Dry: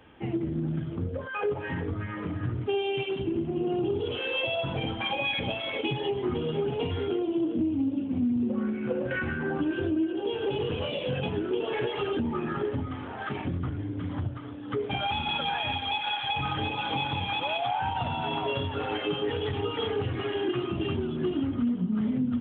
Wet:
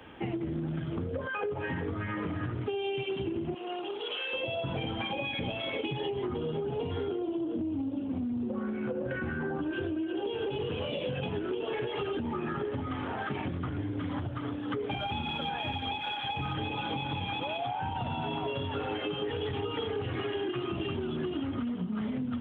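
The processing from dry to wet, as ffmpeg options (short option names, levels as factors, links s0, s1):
-filter_complex "[0:a]asettb=1/sr,asplit=3[s0][s1][s2];[s0]atrim=end=3.544[s3];[s1]atrim=start=3.54:end=4.33,asetpts=PTS-STARTPTS,afade=t=in:d=0.004:c=qsin,afade=t=out:st=0.786:d=0.004:c=qsin,highpass=880[s4];[s2]atrim=start=4.326[s5];[s3][s4]acrossfade=d=0.004:c1=hsin:c2=qsin[s6];[s6][s5]acrossfade=d=0.004:c1=qsin:c2=hsin,asettb=1/sr,asplit=3[s7][s8][s9];[s7]atrim=end=6.274[s10];[s8]atrim=start=6.27:end=9.73,asetpts=PTS-STARTPTS,afade=t=in:d=0.004:c=qsin,afade=t=out:st=3.456:d=0.004:c=qsin,equalizer=f=2500:w=1.1:g=-7[s11];[s9]atrim=start=9.726[s12];[s10][s11]acrossfade=d=0.004:c1=hsin:c2=qsin[s13];[s13][s12]acrossfade=d=0.004:c1=qsin:c2=hsin,asettb=1/sr,asplit=3[s14][s15][s16];[s14]atrim=end=13.764[s17];[s15]atrim=start=13.76:end=16.55,asetpts=PTS-STARTPTS,afade=t=in:d=0.004:c=qsin,afade=t=out:st=2.786:d=0.004:c=qsin,aphaser=in_gain=1:out_gain=1:delay=4:decay=0.2:speed=1.4:type=sinusoidal[s18];[s16]atrim=start=16.546[s19];[s17][s18]acrossfade=d=0.004:c1=hsin:c2=qsin[s20];[s20][s19]acrossfade=d=0.004:c1=qsin:c2=hsin,acrossover=split=110|450[s21][s22][s23];[s21]acompressor=threshold=0.00891:ratio=4[s24];[s22]acompressor=threshold=0.0141:ratio=4[s25];[s23]acompressor=threshold=0.0112:ratio=4[s26];[s24][s25][s26]amix=inputs=3:normalize=0,lowshelf=f=110:g=-4.5,acompressor=threshold=0.0178:ratio=6,volume=1.88"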